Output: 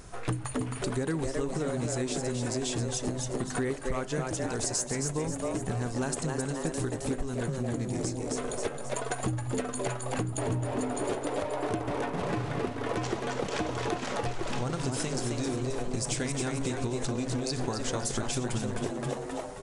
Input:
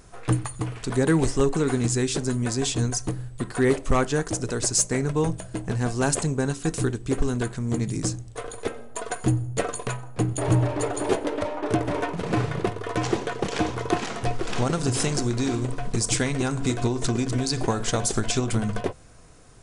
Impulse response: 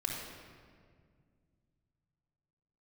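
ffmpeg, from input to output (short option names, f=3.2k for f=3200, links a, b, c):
-filter_complex "[0:a]asplit=6[a][b][c][d][e][f];[b]adelay=266,afreqshift=130,volume=-5.5dB[g];[c]adelay=532,afreqshift=260,volume=-12.8dB[h];[d]adelay=798,afreqshift=390,volume=-20.2dB[i];[e]adelay=1064,afreqshift=520,volume=-27.5dB[j];[f]adelay=1330,afreqshift=650,volume=-34.8dB[k];[a][g][h][i][j][k]amix=inputs=6:normalize=0,acompressor=threshold=-31dB:ratio=6,volume=2.5dB"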